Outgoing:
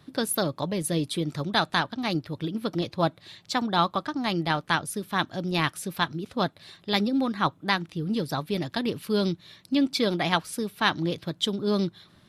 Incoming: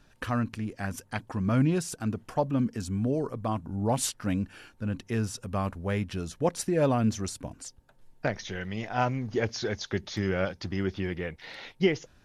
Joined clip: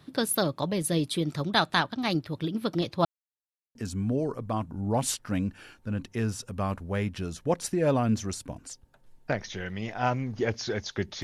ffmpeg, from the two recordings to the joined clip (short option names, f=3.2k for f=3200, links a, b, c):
-filter_complex "[0:a]apad=whole_dur=11.23,atrim=end=11.23,asplit=2[a][b];[a]atrim=end=3.05,asetpts=PTS-STARTPTS,afade=t=out:st=3.046:d=0.004:c=hsin[c];[b]atrim=start=3.05:end=3.75,asetpts=PTS-STARTPTS,volume=0[d];[1:a]atrim=start=2.7:end=10.18,asetpts=PTS-STARTPTS,afade=t=in:d=0.004:c=hsin[e];[c][d][e]concat=n=3:v=0:a=1"